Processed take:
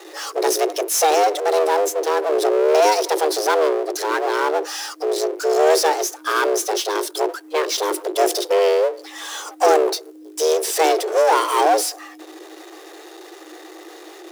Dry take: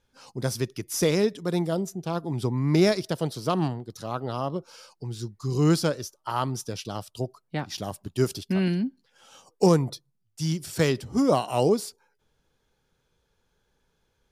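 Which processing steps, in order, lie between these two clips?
octaver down 1 oct, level -5 dB; power-law curve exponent 0.5; frequency shift +310 Hz

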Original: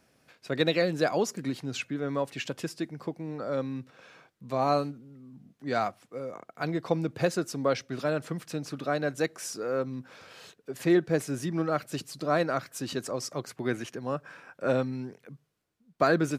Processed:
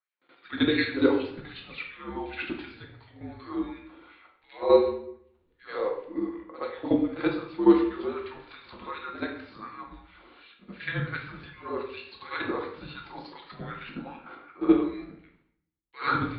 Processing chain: steep low-pass 4500 Hz 96 dB/oct; gate with hold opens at -49 dBFS; level quantiser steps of 12 dB; LFO high-pass sine 2.7 Hz 510–2600 Hz; reverse echo 75 ms -13 dB; shoebox room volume 160 m³, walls mixed, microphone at 1 m; frequency shift -210 Hz

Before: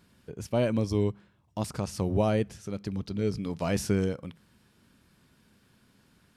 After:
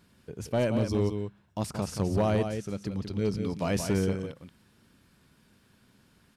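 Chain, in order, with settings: echo 0.178 s -7.5 dB; hard clip -19.5 dBFS, distortion -19 dB

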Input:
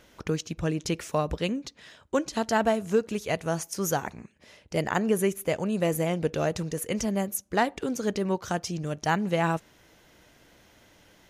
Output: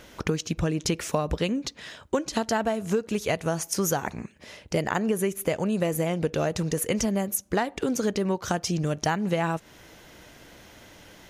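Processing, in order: compressor 6:1, threshold -30 dBFS, peak gain reduction 12 dB; gain +8 dB

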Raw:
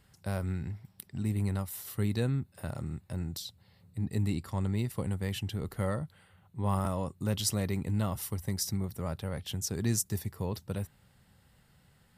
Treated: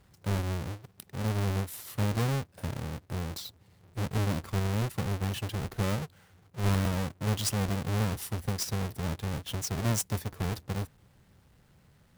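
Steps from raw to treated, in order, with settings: half-waves squared off; gain -3 dB

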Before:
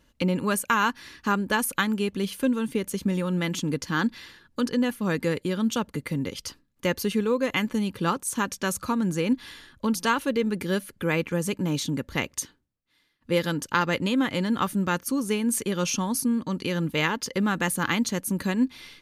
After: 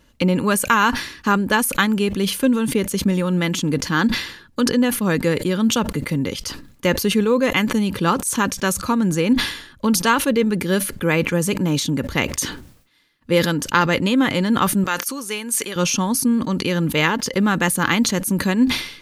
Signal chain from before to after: 14.84–15.76 HPF 1100 Hz 6 dB/oct; sustainer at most 88 dB/s; gain +6.5 dB

